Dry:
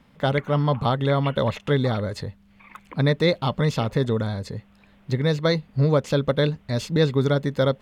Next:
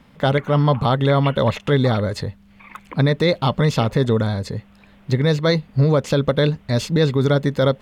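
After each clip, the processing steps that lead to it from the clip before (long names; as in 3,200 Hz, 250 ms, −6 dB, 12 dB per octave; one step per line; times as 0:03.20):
brickwall limiter −13 dBFS, peak gain reduction 4.5 dB
level +5.5 dB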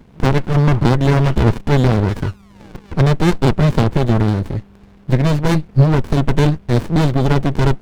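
sound drawn into the spectrogram fall, 0:02.08–0:02.93, 550–1,900 Hz −28 dBFS
windowed peak hold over 65 samples
level +6.5 dB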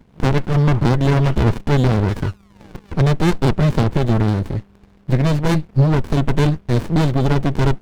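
leveller curve on the samples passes 1
level −4.5 dB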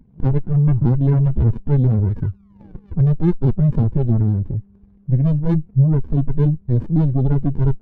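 expanding power law on the bin magnitudes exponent 1.8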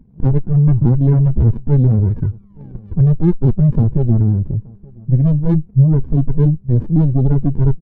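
tilt shelving filter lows +3.5 dB
slap from a distant wall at 150 metres, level −25 dB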